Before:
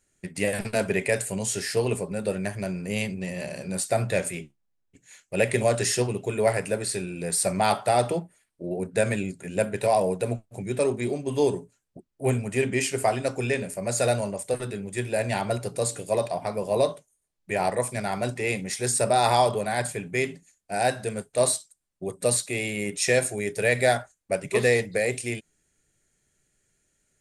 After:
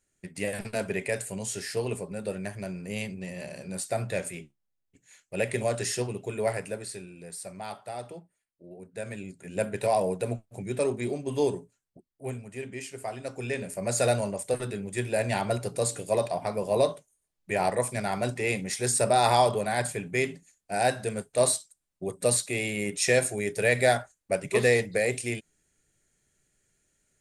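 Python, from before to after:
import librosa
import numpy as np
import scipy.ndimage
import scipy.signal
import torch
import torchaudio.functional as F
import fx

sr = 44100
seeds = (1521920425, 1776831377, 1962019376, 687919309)

y = fx.gain(x, sr, db=fx.line((6.53, -5.5), (7.46, -16.0), (8.86, -16.0), (9.67, -3.0), (11.43, -3.0), (12.49, -13.0), (13.02, -13.0), (13.83, -1.0)))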